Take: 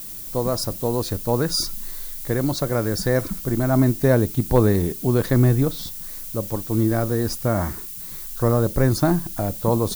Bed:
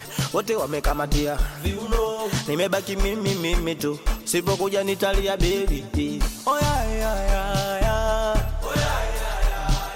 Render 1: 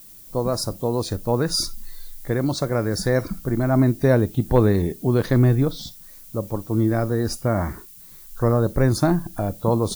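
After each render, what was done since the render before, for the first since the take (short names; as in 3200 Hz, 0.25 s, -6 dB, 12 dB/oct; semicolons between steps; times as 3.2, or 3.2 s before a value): noise print and reduce 10 dB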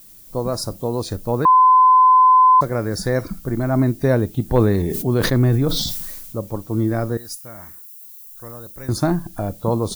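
1.45–2.61 bleep 1020 Hz -8 dBFS; 4.48–6.36 sustainer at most 32 dB/s; 7.17–8.89 pre-emphasis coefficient 0.9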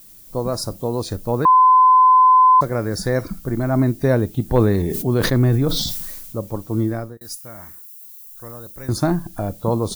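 6.81–7.21 fade out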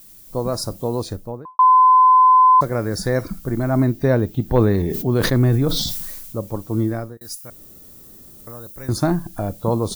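0.93–1.59 studio fade out; 3.86–5.15 bell 9300 Hz -8 dB 0.94 oct; 7.5–8.47 room tone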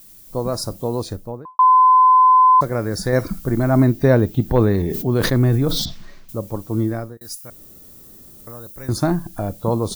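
3.13–4.52 gain +3 dB; 5.85–6.29 air absorption 230 m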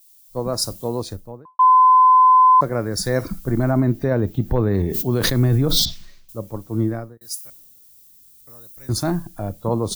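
limiter -10.5 dBFS, peak gain reduction 8 dB; three-band expander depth 70%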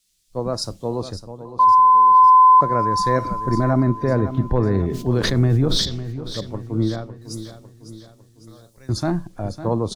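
air absorption 77 m; feedback echo 0.553 s, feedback 48%, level -12.5 dB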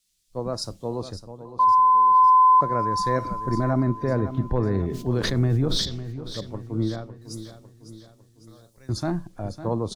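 gain -4.5 dB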